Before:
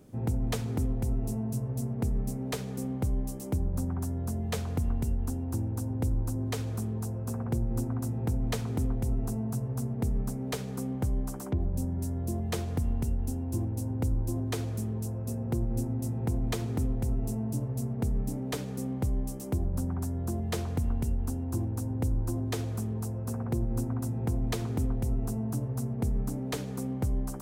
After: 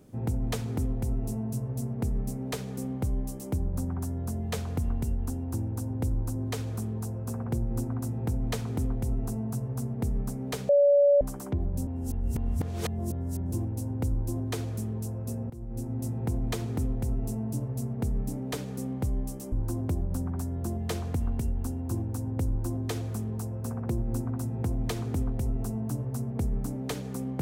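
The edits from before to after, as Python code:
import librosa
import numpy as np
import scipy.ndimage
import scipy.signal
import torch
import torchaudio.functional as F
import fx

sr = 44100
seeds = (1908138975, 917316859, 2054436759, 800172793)

y = fx.edit(x, sr, fx.bleep(start_s=10.69, length_s=0.52, hz=571.0, db=-16.5),
    fx.reverse_span(start_s=11.87, length_s=1.65),
    fx.fade_in_from(start_s=15.5, length_s=0.51, floor_db=-19.0),
    fx.duplicate(start_s=22.11, length_s=0.37, to_s=19.52), tone=tone)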